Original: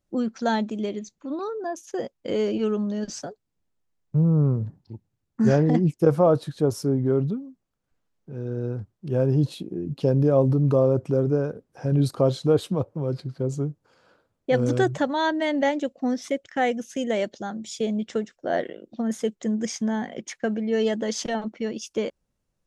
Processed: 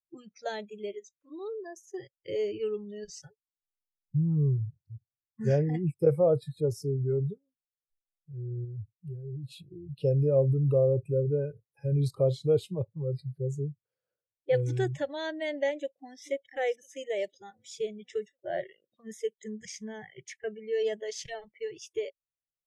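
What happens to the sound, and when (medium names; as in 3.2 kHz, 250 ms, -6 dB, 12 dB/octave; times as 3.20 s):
8.64–9.97 s: compression 10:1, threshold -28 dBFS
15.76–16.25 s: echo throw 500 ms, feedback 55%, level -9.5 dB
whole clip: dynamic bell 1.2 kHz, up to -4 dB, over -40 dBFS, Q 1.4; spectral noise reduction 25 dB; graphic EQ 125/250/500/1000/2000 Hz +8/-10/+10/-9/+5 dB; trim -9 dB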